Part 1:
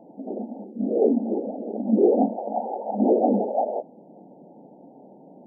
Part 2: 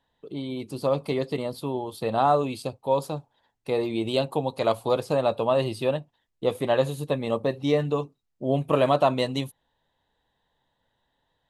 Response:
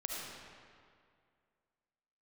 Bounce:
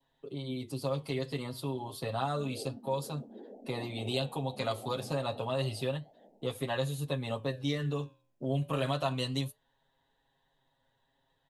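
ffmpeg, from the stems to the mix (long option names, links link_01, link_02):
-filter_complex "[0:a]acompressor=threshold=-31dB:ratio=1.5,adelay=1600,volume=-8dB,asplit=2[link_01][link_02];[link_02]volume=-6.5dB[link_03];[1:a]aecho=1:1:7.4:0.9,volume=0.5dB,asplit=2[link_04][link_05];[link_05]apad=whole_len=311655[link_06];[link_01][link_06]sidechaingate=range=-33dB:threshold=-34dB:ratio=16:detection=peak[link_07];[link_03]aecho=0:1:441|882|1323|1764:1|0.28|0.0784|0.022[link_08];[link_07][link_04][link_08]amix=inputs=3:normalize=0,adynamicequalizer=threshold=0.0112:dfrequency=1500:dqfactor=1.6:tfrequency=1500:tqfactor=1.6:attack=5:release=100:ratio=0.375:range=3:mode=boostabove:tftype=bell,acrossover=split=130|3000[link_09][link_10][link_11];[link_10]acompressor=threshold=-36dB:ratio=2[link_12];[link_09][link_12][link_11]amix=inputs=3:normalize=0,flanger=delay=4.4:depth=7.7:regen=-85:speed=0.3:shape=sinusoidal"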